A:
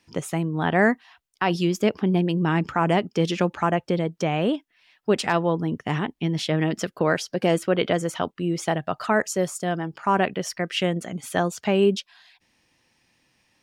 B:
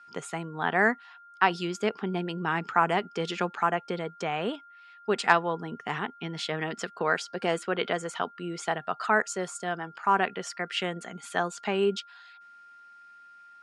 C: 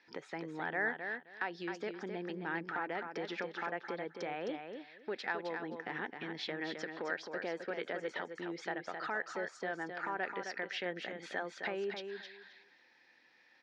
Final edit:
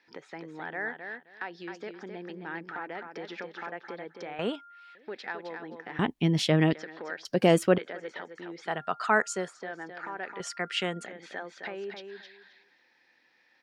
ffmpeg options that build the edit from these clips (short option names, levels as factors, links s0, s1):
-filter_complex "[1:a]asplit=3[s0][s1][s2];[0:a]asplit=2[s3][s4];[2:a]asplit=6[s5][s6][s7][s8][s9][s10];[s5]atrim=end=4.392[s11];[s0]atrim=start=4.388:end=4.952[s12];[s6]atrim=start=4.948:end=5.992[s13];[s3]atrim=start=5.988:end=6.732[s14];[s7]atrim=start=6.728:end=7.252[s15];[s4]atrim=start=7.248:end=7.782[s16];[s8]atrim=start=7.778:end=8.78[s17];[s1]atrim=start=8.62:end=9.55[s18];[s9]atrim=start=9.39:end=10.402[s19];[s2]atrim=start=10.398:end=11.062[s20];[s10]atrim=start=11.058[s21];[s11][s12]acrossfade=d=0.004:c1=hsin:c2=hsin[s22];[s22][s13]acrossfade=d=0.004:c1=hsin:c2=hsin[s23];[s23][s14]acrossfade=d=0.004:c1=hsin:c2=hsin[s24];[s24][s15]acrossfade=d=0.004:c1=hsin:c2=hsin[s25];[s25][s16]acrossfade=d=0.004:c1=hsin:c2=hsin[s26];[s26][s17]acrossfade=d=0.004:c1=hsin:c2=hsin[s27];[s27][s18]acrossfade=d=0.16:c1=tri:c2=tri[s28];[s28][s19]acrossfade=d=0.16:c1=tri:c2=tri[s29];[s29][s20]acrossfade=d=0.004:c1=hsin:c2=hsin[s30];[s30][s21]acrossfade=d=0.004:c1=hsin:c2=hsin"